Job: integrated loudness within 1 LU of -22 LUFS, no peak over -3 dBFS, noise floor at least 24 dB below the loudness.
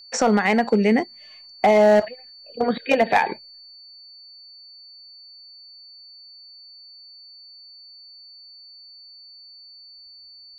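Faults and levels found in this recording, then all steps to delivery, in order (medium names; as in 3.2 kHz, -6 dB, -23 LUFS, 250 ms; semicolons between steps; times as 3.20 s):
clipped samples 0.7%; clipping level -9.5 dBFS; steady tone 4.5 kHz; tone level -43 dBFS; loudness -19.5 LUFS; peak level -9.5 dBFS; loudness target -22.0 LUFS
-> clip repair -9.5 dBFS; band-stop 4.5 kHz, Q 30; trim -2.5 dB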